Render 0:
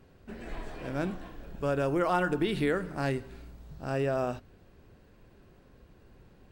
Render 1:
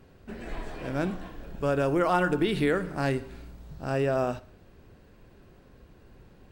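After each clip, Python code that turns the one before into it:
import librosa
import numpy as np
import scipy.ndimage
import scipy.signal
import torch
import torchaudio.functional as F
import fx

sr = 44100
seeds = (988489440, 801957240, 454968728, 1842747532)

y = fx.echo_feedback(x, sr, ms=61, feedback_pct=51, wet_db=-21)
y = y * 10.0 ** (3.0 / 20.0)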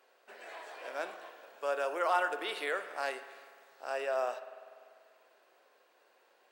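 y = scipy.signal.sosfilt(scipy.signal.butter(4, 540.0, 'highpass', fs=sr, output='sos'), x)
y = fx.rev_spring(y, sr, rt60_s=2.2, pass_ms=(49,), chirp_ms=75, drr_db=11.5)
y = y * 10.0 ** (-3.5 / 20.0)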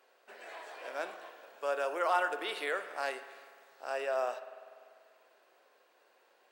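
y = x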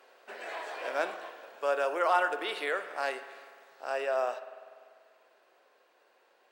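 y = fx.high_shelf(x, sr, hz=7000.0, db=-5.5)
y = fx.rider(y, sr, range_db=5, speed_s=2.0)
y = y * 10.0 ** (3.0 / 20.0)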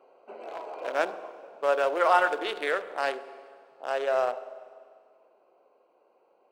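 y = fx.wiener(x, sr, points=25)
y = fx.rev_schroeder(y, sr, rt60_s=1.8, comb_ms=32, drr_db=16.5)
y = y * 10.0 ** (5.0 / 20.0)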